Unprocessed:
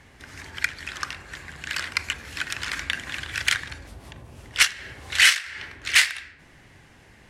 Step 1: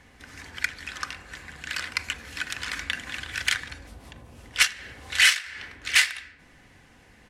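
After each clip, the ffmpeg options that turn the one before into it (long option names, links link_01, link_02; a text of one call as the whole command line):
ffmpeg -i in.wav -af "aecho=1:1:4:0.3,volume=-2.5dB" out.wav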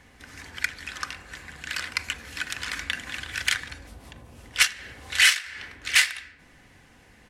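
ffmpeg -i in.wav -af "highshelf=frequency=10000:gain=3.5" out.wav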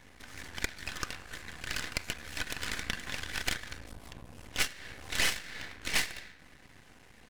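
ffmpeg -i in.wav -af "acompressor=threshold=-30dB:ratio=2,aeval=exprs='max(val(0),0)':channel_layout=same,volume=1.5dB" out.wav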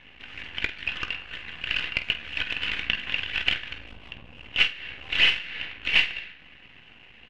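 ffmpeg -i in.wav -af "lowpass=frequency=2800:width_type=q:width=7.3,aecho=1:1:18|49:0.237|0.224" out.wav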